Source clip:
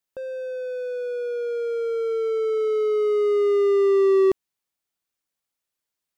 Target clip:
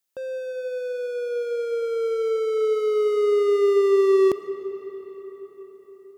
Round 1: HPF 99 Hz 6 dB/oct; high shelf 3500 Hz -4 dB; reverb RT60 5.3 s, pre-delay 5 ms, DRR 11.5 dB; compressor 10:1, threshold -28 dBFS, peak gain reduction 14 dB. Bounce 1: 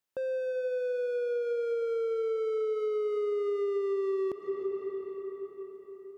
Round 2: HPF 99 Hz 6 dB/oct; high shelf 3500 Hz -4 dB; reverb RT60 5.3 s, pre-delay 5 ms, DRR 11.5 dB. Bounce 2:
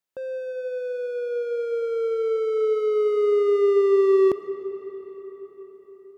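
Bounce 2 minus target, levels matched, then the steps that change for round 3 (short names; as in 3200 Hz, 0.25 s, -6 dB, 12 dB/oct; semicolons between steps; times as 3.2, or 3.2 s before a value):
8000 Hz band -8.5 dB
change: high shelf 3500 Hz +7 dB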